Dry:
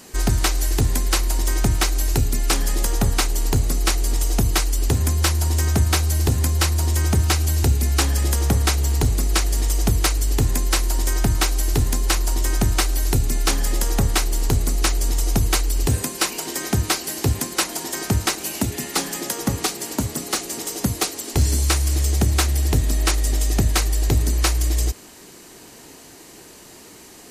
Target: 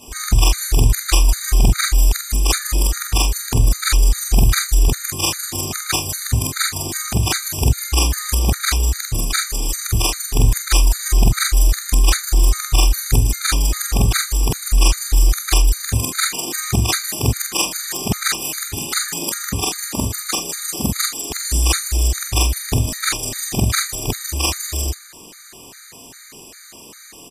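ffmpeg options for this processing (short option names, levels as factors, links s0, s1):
-filter_complex "[0:a]afftfilt=real='re':imag='-im':win_size=4096:overlap=0.75,acrossover=split=240|1200[s0][s1][s2];[s0]aecho=1:1:19|47:0.299|0.266[s3];[s2]acontrast=42[s4];[s3][s1][s4]amix=inputs=3:normalize=0,afftfilt=real='re*gt(sin(2*PI*2.5*pts/sr)*(1-2*mod(floor(b*sr/1024/1200),2)),0)':imag='im*gt(sin(2*PI*2.5*pts/sr)*(1-2*mod(floor(b*sr/1024/1200),2)),0)':win_size=1024:overlap=0.75,volume=2"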